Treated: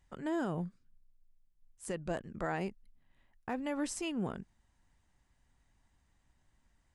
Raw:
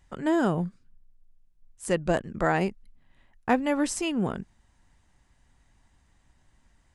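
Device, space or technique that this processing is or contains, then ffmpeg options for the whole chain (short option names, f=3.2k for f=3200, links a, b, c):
clipper into limiter: -af "asoftclip=type=hard:threshold=-10dB,alimiter=limit=-17dB:level=0:latency=1:release=59,volume=-8.5dB"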